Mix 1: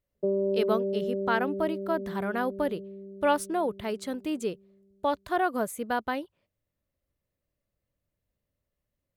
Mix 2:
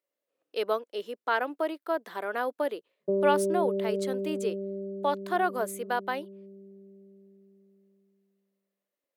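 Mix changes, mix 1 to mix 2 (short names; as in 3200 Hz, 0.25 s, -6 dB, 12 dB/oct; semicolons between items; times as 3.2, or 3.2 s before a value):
speech: add HPF 330 Hz 24 dB/oct; background: entry +2.85 s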